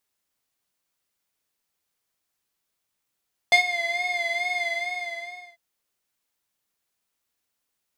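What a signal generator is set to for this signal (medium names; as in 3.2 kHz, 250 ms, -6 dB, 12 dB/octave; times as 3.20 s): synth patch with vibrato F5, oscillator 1 square, oscillator 2 saw, interval +19 st, detune 18 cents, oscillator 2 level -6 dB, sub -20.5 dB, noise -21 dB, filter bandpass, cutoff 1.8 kHz, Q 1.6, filter envelope 0.5 oct, attack 1.1 ms, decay 0.11 s, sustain -14 dB, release 0.95 s, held 1.10 s, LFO 2.3 Hz, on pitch 51 cents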